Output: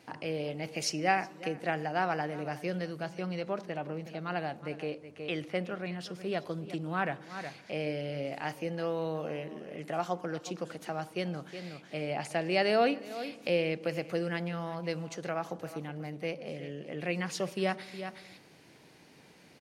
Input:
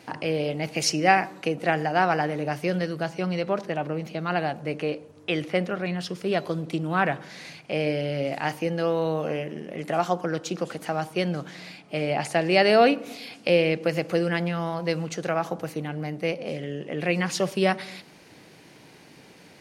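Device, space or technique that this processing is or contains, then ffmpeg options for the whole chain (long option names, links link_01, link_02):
ducked delay: -filter_complex "[0:a]asplit=3[link_01][link_02][link_03];[link_02]adelay=367,volume=-4.5dB[link_04];[link_03]apad=whole_len=880643[link_05];[link_04][link_05]sidechaincompress=threshold=-39dB:ratio=8:attack=39:release=302[link_06];[link_01][link_06]amix=inputs=2:normalize=0,volume=-8.5dB"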